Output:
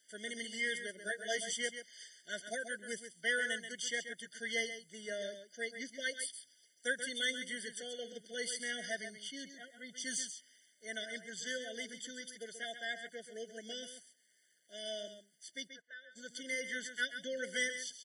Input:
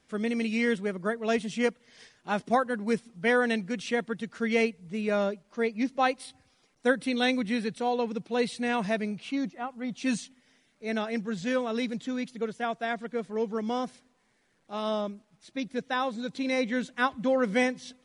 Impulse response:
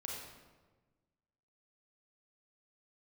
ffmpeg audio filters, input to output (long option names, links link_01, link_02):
-filter_complex "[0:a]aderivative,asplit=2[link_01][link_02];[link_02]asoftclip=type=tanh:threshold=-38.5dB,volume=-11.5dB[link_03];[link_01][link_03]amix=inputs=2:normalize=0,asettb=1/sr,asplit=3[link_04][link_05][link_06];[link_04]atrim=end=0.984[link_07];[link_05]atrim=start=0.98:end=1.57,asetpts=PTS-STARTPTS,afade=type=in:duration=0.004:curve=qsin,afade=type=out:start_time=0.586:duration=0.004:curve=qsin,asplit=2[link_08][link_09];[link_09]adelay=15,volume=-2.5dB[link_10];[link_08][link_10]amix=inputs=2:normalize=0,atrim=end_sample=26019[link_11];[link_06]atrim=start=1.566[link_12];[link_07][link_11]acrossfade=duration=0.004:curve1=hsin:curve2=qsin[link_13];[link_13][link_12]acrossfade=duration=0.004:curve1=qsin:curve2=hsin,asplit=3[link_14][link_15][link_16];[link_14]afade=type=out:start_time=15.67:duration=0.02[link_17];[link_15]bandpass=frequency=1100:width_type=q:width=3.8:csg=0,afade=type=in:start_time=15.67:duration=0.02,afade=type=out:start_time=16.15:duration=0.02[link_18];[link_16]afade=type=in:start_time=16.15:duration=0.02[link_19];[link_17][link_18][link_19]amix=inputs=3:normalize=0,aecho=1:1:133:0.335,afftfilt=real='re*eq(mod(floor(b*sr/1024/720),2),0)':imag='im*eq(mod(floor(b*sr/1024/720),2),0)':win_size=1024:overlap=0.75,volume=6dB"